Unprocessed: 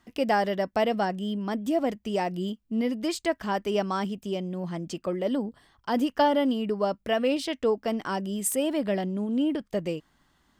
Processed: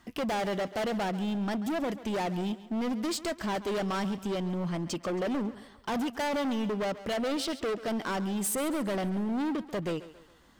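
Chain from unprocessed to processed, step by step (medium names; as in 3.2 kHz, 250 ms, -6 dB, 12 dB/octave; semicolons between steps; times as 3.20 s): in parallel at -2 dB: compression, threshold -36 dBFS, peak gain reduction 17 dB; on the sum: hard clipper -28.5 dBFS, distortion -6 dB; thinning echo 137 ms, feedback 46%, high-pass 210 Hz, level -15 dB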